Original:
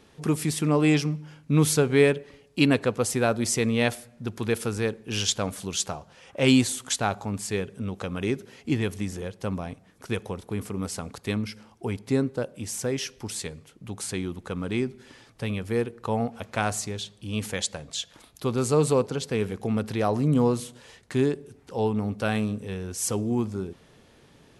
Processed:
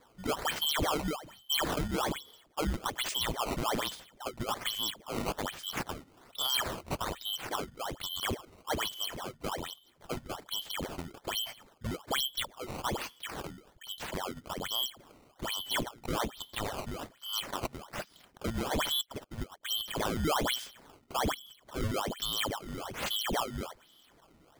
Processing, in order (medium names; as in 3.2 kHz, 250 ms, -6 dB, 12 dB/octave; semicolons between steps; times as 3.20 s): four frequency bands reordered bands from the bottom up 2413; peak limiter -15 dBFS, peak gain reduction 9 dB; decimation with a swept rate 15×, swing 160% 1.2 Hz; 19.01–19.81 s: upward expansion 2.5:1, over -41 dBFS; trim -6.5 dB